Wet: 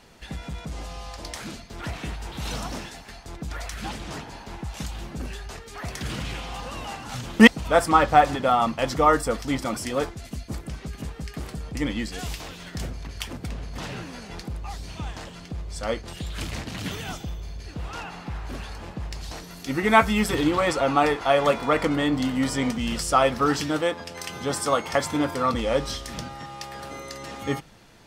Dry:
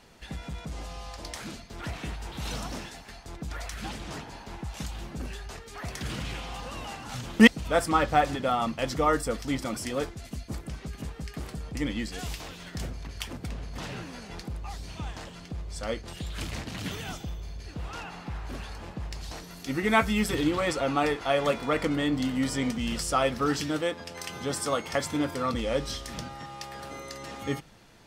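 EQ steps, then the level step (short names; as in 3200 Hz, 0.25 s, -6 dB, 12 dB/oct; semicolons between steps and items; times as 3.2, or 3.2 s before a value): dynamic EQ 930 Hz, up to +5 dB, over -40 dBFS, Q 1.1; +3.0 dB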